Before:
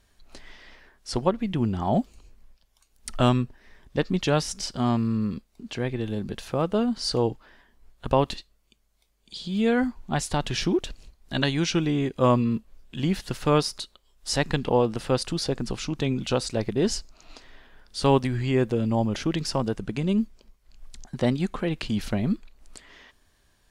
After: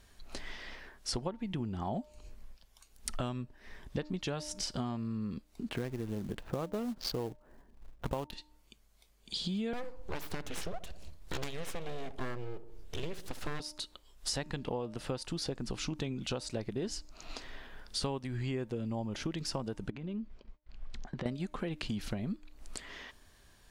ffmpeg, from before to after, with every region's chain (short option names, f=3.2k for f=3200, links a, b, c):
-filter_complex "[0:a]asettb=1/sr,asplit=3[a][b][c];[a]atrim=end=5.694[d];[b]atrim=start=5.69:end=8.33,asetpts=PTS-STARTPTS,afade=t=in:d=0.004:c=qsin,afade=t=out:st=2.636:d=0.004:c=qsin,adynamicsmooth=sensitivity=5:basefreq=600,acrusher=bits=5:mode=log:mix=0:aa=0.000001[e];[c]atrim=start=8.326[f];[d][e]acrossfade=d=0.004:c1=hsin:c2=qsin[g];[g][f]acrossfade=d=0.004:c1=qsin:c2=hsin,asettb=1/sr,asplit=3[h][i][j];[h]atrim=end=9.734[k];[i]atrim=start=9.73:end=13.6,asetpts=PTS-STARTPTS,afade=t=in:d=0.004:c=qsin,afade=t=out:st=3.866:d=0.004:c=qsin,aeval=exprs='abs(val(0))':c=same,asplit=2[l][m];[m]adelay=66,lowpass=f=1k:p=1,volume=-14.5dB,asplit=2[n][o];[o]adelay=66,lowpass=f=1k:p=1,volume=0.5,asplit=2[p][q];[q]adelay=66,lowpass=f=1k:p=1,volume=0.5,asplit=2[r][s];[s]adelay=66,lowpass=f=1k:p=1,volume=0.5,asplit=2[t][u];[u]adelay=66,lowpass=f=1k:p=1,volume=0.5[v];[l][n][p][r][t][v]amix=inputs=6:normalize=0,atrim=end_sample=170667[w];[j]atrim=start=13.596[x];[k][w]acrossfade=d=0.004:c1=hsin:c2=qsin[y];[y][x]acrossfade=d=0.004:c1=qsin:c2=hsin,asettb=1/sr,asplit=3[z][aa][ab];[z]atrim=end=19.904[ac];[aa]atrim=start=19.9:end=21.26,asetpts=PTS-STARTPTS,afade=t=in:d=0.004:c=qsin,afade=t=out:st=1.356:d=0.004:c=qsin,lowpass=3.1k,acompressor=threshold=-37dB:ratio=8:attack=3.2:release=140:knee=1:detection=peak,agate=range=-33dB:threshold=-52dB:ratio=3:release=100:detection=peak[ad];[ab]atrim=start=21.256[ae];[ac][ad]acrossfade=d=0.004:c1=hsin:c2=qsin[af];[af][ae]acrossfade=d=0.004:c1=qsin:c2=hsin,bandreject=f=302.2:t=h:w=4,bandreject=f=604.4:t=h:w=4,bandreject=f=906.6:t=h:w=4,acompressor=threshold=-36dB:ratio=10,volume=3dB"